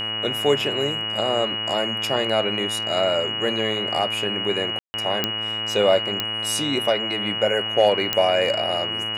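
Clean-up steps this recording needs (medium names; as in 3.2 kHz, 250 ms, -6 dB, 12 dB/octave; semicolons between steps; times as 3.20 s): de-click; de-hum 109.3 Hz, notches 26; band-stop 2.9 kHz, Q 30; room tone fill 4.79–4.94 s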